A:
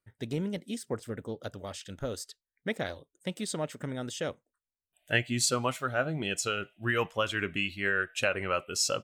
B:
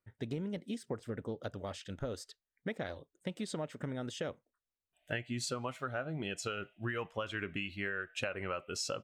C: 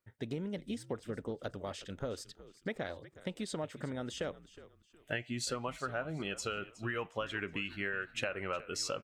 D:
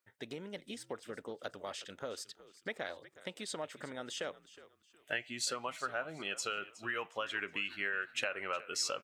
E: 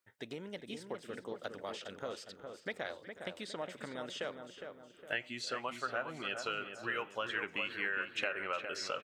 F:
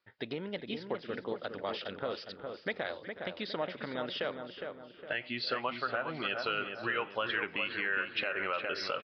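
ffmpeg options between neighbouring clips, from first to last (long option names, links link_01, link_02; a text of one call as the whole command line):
ffmpeg -i in.wav -af "lowpass=frequency=2900:poles=1,acompressor=threshold=-34dB:ratio=6" out.wav
ffmpeg -i in.wav -filter_complex "[0:a]lowshelf=frequency=140:gain=-5,asplit=4[link_01][link_02][link_03][link_04];[link_02]adelay=365,afreqshift=-77,volume=-17dB[link_05];[link_03]adelay=730,afreqshift=-154,volume=-26.6dB[link_06];[link_04]adelay=1095,afreqshift=-231,volume=-36.3dB[link_07];[link_01][link_05][link_06][link_07]amix=inputs=4:normalize=0,volume=1dB" out.wav
ffmpeg -i in.wav -af "highpass=frequency=780:poles=1,volume=2.5dB" out.wav
ffmpeg -i in.wav -filter_complex "[0:a]acrossover=split=4800[link_01][link_02];[link_02]acompressor=threshold=-56dB:ratio=4:attack=1:release=60[link_03];[link_01][link_03]amix=inputs=2:normalize=0,asplit=2[link_04][link_05];[link_05]adelay=410,lowpass=frequency=1700:poles=1,volume=-6dB,asplit=2[link_06][link_07];[link_07]adelay=410,lowpass=frequency=1700:poles=1,volume=0.46,asplit=2[link_08][link_09];[link_09]adelay=410,lowpass=frequency=1700:poles=1,volume=0.46,asplit=2[link_10][link_11];[link_11]adelay=410,lowpass=frequency=1700:poles=1,volume=0.46,asplit=2[link_12][link_13];[link_13]adelay=410,lowpass=frequency=1700:poles=1,volume=0.46,asplit=2[link_14][link_15];[link_15]adelay=410,lowpass=frequency=1700:poles=1,volume=0.46[link_16];[link_04][link_06][link_08][link_10][link_12][link_14][link_16]amix=inputs=7:normalize=0" out.wav
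ffmpeg -i in.wav -af "alimiter=level_in=3dB:limit=-24dB:level=0:latency=1:release=110,volume=-3dB,aresample=11025,aresample=44100,volume=6dB" out.wav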